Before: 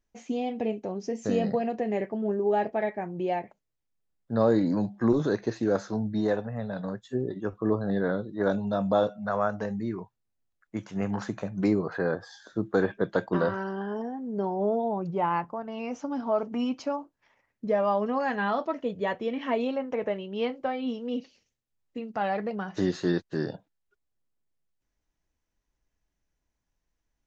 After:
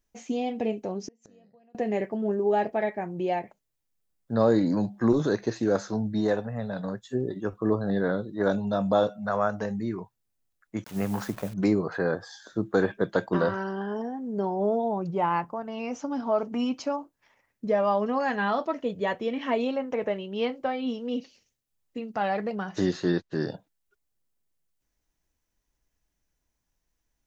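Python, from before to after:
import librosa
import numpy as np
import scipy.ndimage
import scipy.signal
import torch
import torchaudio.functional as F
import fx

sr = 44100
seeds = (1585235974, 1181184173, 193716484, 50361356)

y = fx.gate_flip(x, sr, shuts_db=-27.0, range_db=-33, at=(1.07, 1.75))
y = fx.delta_hold(y, sr, step_db=-45.0, at=(10.84, 11.54))
y = fx.air_absorb(y, sr, metres=81.0, at=(22.93, 23.41))
y = fx.high_shelf(y, sr, hz=6100.0, db=8.0)
y = F.gain(torch.from_numpy(y), 1.0).numpy()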